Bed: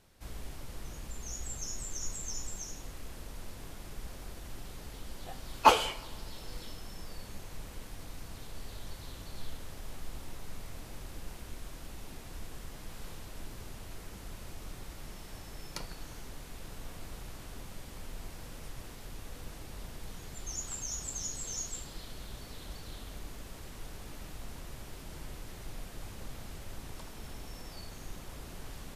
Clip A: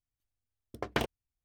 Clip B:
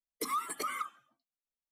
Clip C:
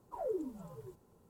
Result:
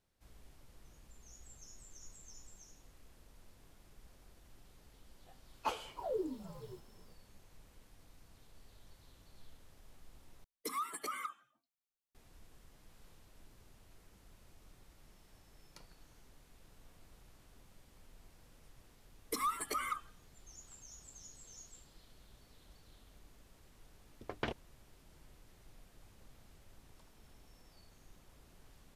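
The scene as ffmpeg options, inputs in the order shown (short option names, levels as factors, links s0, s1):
-filter_complex "[2:a]asplit=2[s0][s1];[0:a]volume=0.15[s2];[1:a]lowpass=4700[s3];[s2]asplit=2[s4][s5];[s4]atrim=end=10.444[s6];[s0]atrim=end=1.71,asetpts=PTS-STARTPTS,volume=0.562[s7];[s5]atrim=start=12.146[s8];[3:a]atrim=end=1.29,asetpts=PTS-STARTPTS,volume=0.944,afade=t=in:d=0.004:c=hsin,afade=t=out:st=1.286:d=0.004:c=hsin,adelay=257985S[s9];[s1]atrim=end=1.71,asetpts=PTS-STARTPTS,volume=0.841,afade=t=in:d=0.004:c=hsin,afade=t=out:st=1.706:d=0.004:c=hsin,adelay=19110[s10];[s3]atrim=end=1.44,asetpts=PTS-STARTPTS,volume=0.422,afade=t=in:d=0.004:c=hsin,afade=t=out:st=1.436:d=0.004:c=hsin,adelay=23470[s11];[s6][s7]acrossfade=d=0.004:c1=hsin:c2=hsin[s12];[s12][s8]acrossfade=d=0.004:c1=hsin:c2=hsin[s13];[s13][s9][s10][s11]amix=inputs=4:normalize=0"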